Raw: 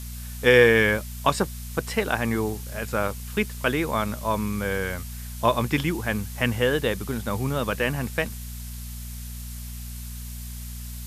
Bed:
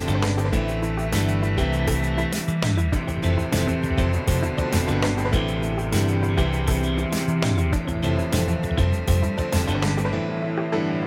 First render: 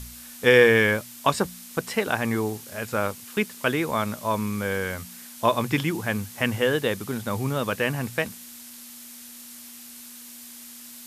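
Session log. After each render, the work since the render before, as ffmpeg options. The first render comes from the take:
-af "bandreject=f=60:t=h:w=4,bandreject=f=120:t=h:w=4,bandreject=f=180:t=h:w=4"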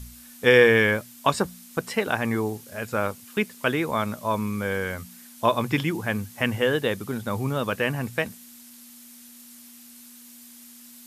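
-af "afftdn=nr=6:nf=-43"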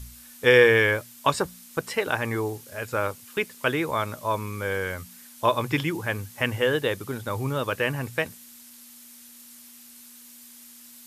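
-af "equalizer=f=210:w=4.2:g=-11.5,bandreject=f=710:w=12"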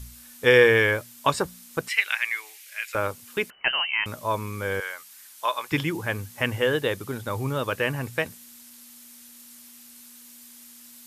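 -filter_complex "[0:a]asettb=1/sr,asplit=3[s0][s1][s2];[s0]atrim=end=1.884[s3];[s1]atrim=start=1.88:end=2.95,asetpts=PTS-STARTPTS,afade=t=in:d=0.004:c=qsin,afade=t=out:st=1.066:d=0.004:c=qsin,highpass=f=2200:t=q:w=3.5[s4];[s2]atrim=start=2.946[s5];[s3][s4]acrossfade=d=0.004:c1=hsin:c2=qsin[s6];[s6][s5]acrossfade=d=0.004:c1=qsin:c2=hsin,asettb=1/sr,asplit=3[s7][s8][s9];[s7]atrim=end=3.504[s10];[s8]atrim=start=3.5:end=4.06,asetpts=PTS-STARTPTS,afade=t=in:d=0.004:c=qsin,afade=t=out:st=0.556:d=0.004:c=qsin,lowpass=f=2700:t=q:w=0.5098,lowpass=f=2700:t=q:w=0.6013,lowpass=f=2700:t=q:w=0.9,lowpass=f=2700:t=q:w=2.563,afreqshift=-3200[s11];[s9]atrim=start=4.056[s12];[s10][s11]acrossfade=d=0.004:c1=hsin:c2=qsin[s13];[s13][s12]acrossfade=d=0.004:c1=qsin:c2=hsin,asettb=1/sr,asplit=3[s14][s15][s16];[s14]atrim=end=4.804[s17];[s15]atrim=start=4.8:end=5.72,asetpts=PTS-STARTPTS,afade=t=in:d=0.004:c=qsin,afade=t=out:st=0.916:d=0.004:c=qsin,highpass=920[s18];[s16]atrim=start=5.716[s19];[s17][s18]acrossfade=d=0.004:c1=hsin:c2=qsin[s20];[s20][s19]acrossfade=d=0.004:c1=qsin:c2=hsin"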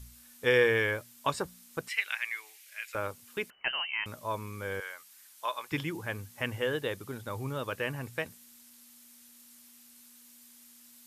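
-af "volume=0.398"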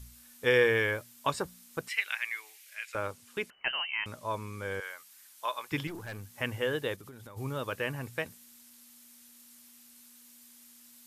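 -filter_complex "[0:a]asettb=1/sr,asplit=3[s0][s1][s2];[s0]atrim=end=2.754[s3];[s1]atrim=start=2.75:end=4.84,asetpts=PTS-STARTPTS,afade=t=in:d=0.004:c=qsin,afade=t=out:st=2.086:d=0.004:c=qsin,lowpass=11000[s4];[s2]atrim=start=4.836[s5];[s3][s4]acrossfade=d=0.004:c1=hsin:c2=qsin[s6];[s6][s5]acrossfade=d=0.004:c1=qsin:c2=hsin,asettb=1/sr,asplit=3[s7][s8][s9];[s7]atrim=end=5.874[s10];[s8]atrim=start=5.87:end=6.34,asetpts=PTS-STARTPTS,afade=t=in:d=0.004:c=qsin,afade=t=out:st=0.466:d=0.004:c=qsin,aeval=exprs='(tanh(63.1*val(0)+0.35)-tanh(0.35))/63.1':c=same[s11];[s9]atrim=start=6.336[s12];[s10][s11]acrossfade=d=0.004:c1=hsin:c2=qsin[s13];[s13][s12]acrossfade=d=0.004:c1=qsin:c2=hsin,asplit=3[s14][s15][s16];[s14]afade=t=out:st=6.95:d=0.02[s17];[s15]acompressor=threshold=0.00631:ratio=12:attack=3.2:release=140:knee=1:detection=peak,afade=t=in:st=6.95:d=0.02,afade=t=out:st=7.36:d=0.02[s18];[s16]afade=t=in:st=7.36:d=0.02[s19];[s17][s18][s19]amix=inputs=3:normalize=0"

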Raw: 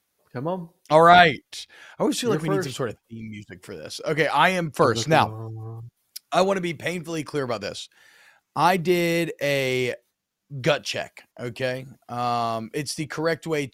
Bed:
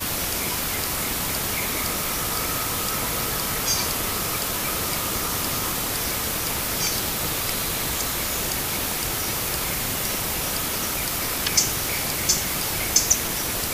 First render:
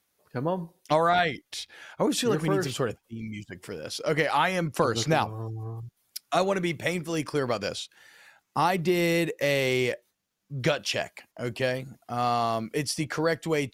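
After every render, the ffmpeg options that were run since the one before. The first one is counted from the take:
-af "acompressor=threshold=0.1:ratio=5"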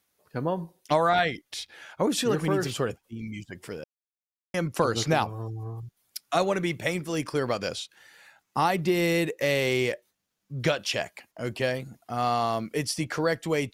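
-filter_complex "[0:a]asplit=3[s0][s1][s2];[s0]atrim=end=3.84,asetpts=PTS-STARTPTS,afade=t=out:st=3.836:d=0.004:c=hsin[s3];[s1]atrim=start=3.84:end=4.54,asetpts=PTS-STARTPTS,volume=0[s4];[s2]atrim=start=4.54,asetpts=PTS-STARTPTS,afade=t=in:d=0.004:c=hsin[s5];[s3][s4][s5]concat=n=3:v=0:a=1"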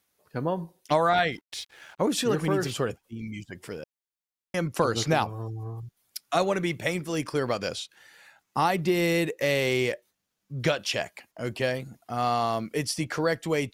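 -filter_complex "[0:a]asettb=1/sr,asplit=3[s0][s1][s2];[s0]atrim=end=1.324[s3];[s1]atrim=start=1.32:end=2.25,asetpts=PTS-STARTPTS,afade=t=in:d=0.004:c=qsin,afade=t=out:st=0.926:d=0.004:c=qsin,aeval=exprs='sgn(val(0))*max(abs(val(0))-0.00168,0)':c=same[s4];[s2]atrim=start=2.246[s5];[s3][s4]acrossfade=d=0.004:c1=hsin:c2=qsin[s6];[s6][s5]acrossfade=d=0.004:c1=qsin:c2=hsin"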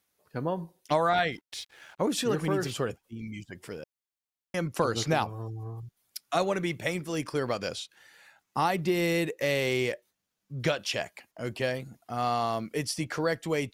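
-af "volume=0.75"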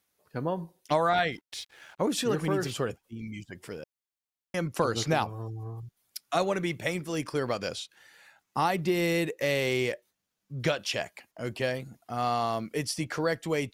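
-af anull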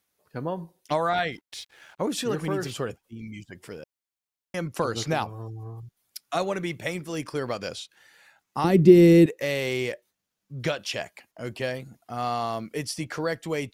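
-filter_complex "[0:a]asettb=1/sr,asplit=3[s0][s1][s2];[s0]atrim=end=8.644[s3];[s1]atrim=start=8.64:end=9.26,asetpts=PTS-STARTPTS,afade=t=in:d=0.004:c=qsin,afade=t=out:st=0.616:d=0.004:c=qsin,lowshelf=f=520:t=q:w=1.5:g=12.5[s4];[s2]atrim=start=9.256[s5];[s3][s4]acrossfade=d=0.004:c1=hsin:c2=qsin[s6];[s6][s5]acrossfade=d=0.004:c1=qsin:c2=hsin"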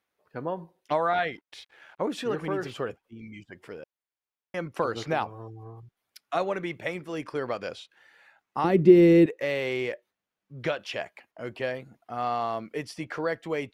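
-af "bass=f=250:g=-7,treble=f=4000:g=-14"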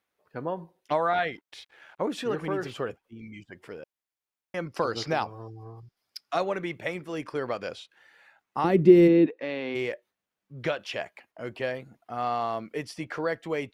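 -filter_complex "[0:a]asettb=1/sr,asplit=3[s0][s1][s2];[s0]atrim=end=4.664[s3];[s1]atrim=start=4.66:end=6.41,asetpts=PTS-STARTPTS,afade=t=in:d=0.004:c=qsin,afade=t=out:st=1.746:d=0.004:c=qsin,equalizer=f=5000:w=4.1:g=14[s4];[s2]atrim=start=6.406[s5];[s3][s4]acrossfade=d=0.004:c1=hsin:c2=qsin[s6];[s6][s5]acrossfade=d=0.004:c1=qsin:c2=hsin,asplit=3[s7][s8][s9];[s7]afade=t=out:st=9.07:d=0.02[s10];[s8]highpass=210,equalizer=f=260:t=q:w=4:g=8,equalizer=f=390:t=q:w=4:g=-5,equalizer=f=560:t=q:w=4:g=-5,equalizer=f=1300:t=q:w=4:g=-4,equalizer=f=2000:t=q:w=4:g=-6,equalizer=f=3000:t=q:w=4:g=-5,lowpass=f=4000:w=0.5412,lowpass=f=4000:w=1.3066,afade=t=in:st=9.07:d=0.02,afade=t=out:st=9.74:d=0.02[s11];[s9]afade=t=in:st=9.74:d=0.02[s12];[s10][s11][s12]amix=inputs=3:normalize=0"

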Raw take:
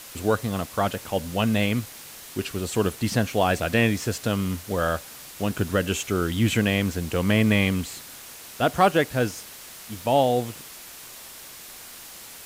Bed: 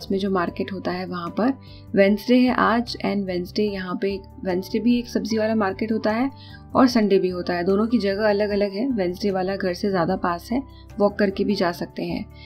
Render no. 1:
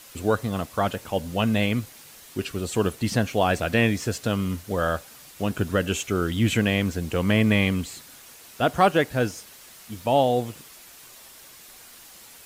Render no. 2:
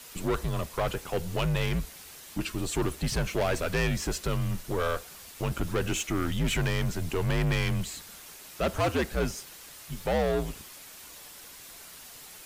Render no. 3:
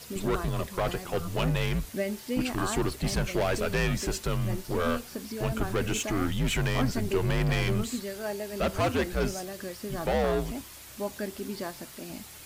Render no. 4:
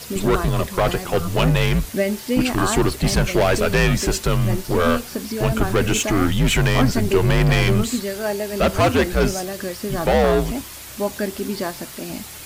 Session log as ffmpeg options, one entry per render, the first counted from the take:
-af "afftdn=nr=6:nf=-43"
-af "asoftclip=type=tanh:threshold=0.075,afreqshift=-70"
-filter_complex "[1:a]volume=0.188[s0];[0:a][s0]amix=inputs=2:normalize=0"
-af "volume=3.16"

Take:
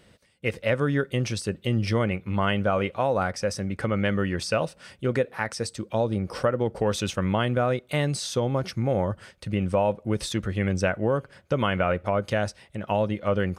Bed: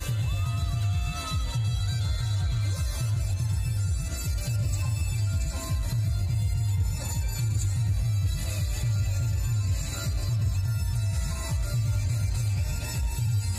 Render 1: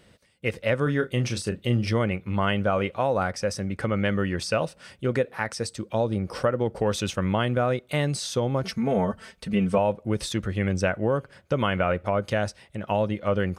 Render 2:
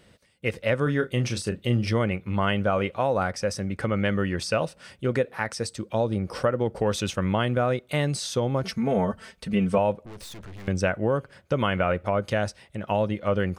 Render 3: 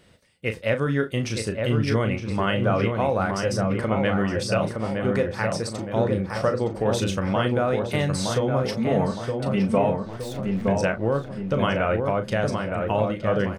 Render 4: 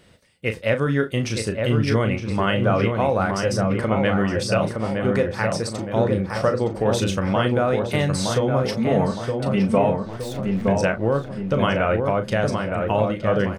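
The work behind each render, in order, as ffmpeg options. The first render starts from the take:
-filter_complex "[0:a]asettb=1/sr,asplit=3[s0][s1][s2];[s0]atrim=end=0.834[s3];[s1]atrim=start=0.83:end=1.9,asetpts=PTS-STARTPTS,afade=t=in:d=0.004:c=qsin,afade=t=out:st=1.066:d=0.004:c=qsin,asplit=2[s4][s5];[s5]adelay=33,volume=0.355[s6];[s4][s6]amix=inputs=2:normalize=0,atrim=end_sample=47187[s7];[s2]atrim=start=1.896[s8];[s3][s7]acrossfade=d=0.004:c1=hsin:c2=qsin[s9];[s9][s8]acrossfade=d=0.004:c1=qsin:c2=hsin,asettb=1/sr,asplit=3[s10][s11][s12];[s10]atrim=end=8.644[s13];[s11]atrim=start=8.64:end=9.78,asetpts=PTS-STARTPTS,afade=t=in:d=0.004:c=qsin,afade=t=out:st=1.136:d=0.004:c=qsin,aecho=1:1:4.5:0.91,atrim=end_sample=50274[s14];[s12]atrim=start=9.776[s15];[s13][s14]acrossfade=d=0.004:c1=hsin:c2=qsin[s16];[s16][s15]acrossfade=d=0.004:c1=qsin:c2=hsin"
-filter_complex "[0:a]asettb=1/sr,asplit=3[s0][s1][s2];[s0]atrim=end=10.054[s3];[s1]atrim=start=10.05:end=10.68,asetpts=PTS-STARTPTS,afade=t=in:d=0.004:c=qsin,afade=t=out:st=0.626:d=0.004:c=qsin,aeval=exprs='(tanh(100*val(0)+0.65)-tanh(0.65))/100':c=same[s4];[s2]atrim=start=10.676[s5];[s3][s4]acrossfade=d=0.004:c1=hsin:c2=qsin[s6];[s6][s5]acrossfade=d=0.004:c1=qsin:c2=hsin"
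-filter_complex "[0:a]asplit=2[s0][s1];[s1]adelay=36,volume=0.355[s2];[s0][s2]amix=inputs=2:normalize=0,asplit=2[s3][s4];[s4]adelay=916,lowpass=f=1600:p=1,volume=0.668,asplit=2[s5][s6];[s6]adelay=916,lowpass=f=1600:p=1,volume=0.53,asplit=2[s7][s8];[s8]adelay=916,lowpass=f=1600:p=1,volume=0.53,asplit=2[s9][s10];[s10]adelay=916,lowpass=f=1600:p=1,volume=0.53,asplit=2[s11][s12];[s12]adelay=916,lowpass=f=1600:p=1,volume=0.53,asplit=2[s13][s14];[s14]adelay=916,lowpass=f=1600:p=1,volume=0.53,asplit=2[s15][s16];[s16]adelay=916,lowpass=f=1600:p=1,volume=0.53[s17];[s3][s5][s7][s9][s11][s13][s15][s17]amix=inputs=8:normalize=0"
-af "volume=1.33"

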